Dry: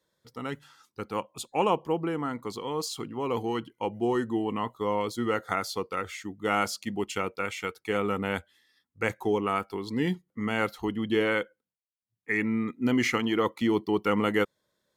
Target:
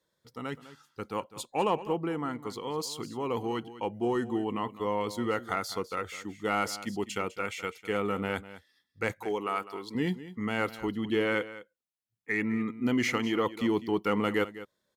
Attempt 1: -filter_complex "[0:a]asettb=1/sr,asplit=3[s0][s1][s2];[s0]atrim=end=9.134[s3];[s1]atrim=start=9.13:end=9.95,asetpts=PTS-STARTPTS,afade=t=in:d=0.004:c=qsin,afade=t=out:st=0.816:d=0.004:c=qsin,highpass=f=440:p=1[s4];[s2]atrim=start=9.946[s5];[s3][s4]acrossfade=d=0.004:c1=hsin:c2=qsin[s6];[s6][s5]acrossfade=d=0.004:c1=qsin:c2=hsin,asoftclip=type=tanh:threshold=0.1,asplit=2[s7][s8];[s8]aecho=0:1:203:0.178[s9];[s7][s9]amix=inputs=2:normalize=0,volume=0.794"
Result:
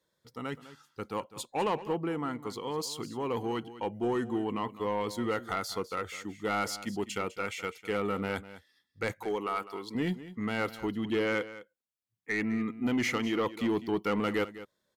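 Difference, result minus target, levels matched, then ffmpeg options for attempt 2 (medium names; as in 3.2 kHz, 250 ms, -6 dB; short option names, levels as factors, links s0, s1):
saturation: distortion +12 dB
-filter_complex "[0:a]asettb=1/sr,asplit=3[s0][s1][s2];[s0]atrim=end=9.134[s3];[s1]atrim=start=9.13:end=9.95,asetpts=PTS-STARTPTS,afade=t=in:d=0.004:c=qsin,afade=t=out:st=0.816:d=0.004:c=qsin,highpass=f=440:p=1[s4];[s2]atrim=start=9.946[s5];[s3][s4]acrossfade=d=0.004:c1=hsin:c2=qsin[s6];[s6][s5]acrossfade=d=0.004:c1=qsin:c2=hsin,asoftclip=type=tanh:threshold=0.266,asplit=2[s7][s8];[s8]aecho=0:1:203:0.178[s9];[s7][s9]amix=inputs=2:normalize=0,volume=0.794"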